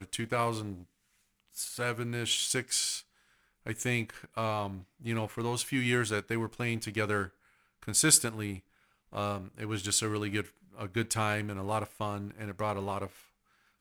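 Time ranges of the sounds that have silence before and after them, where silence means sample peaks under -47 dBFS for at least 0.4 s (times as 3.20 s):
1.55–3.01 s
3.66–7.29 s
7.82–8.59 s
9.12–13.22 s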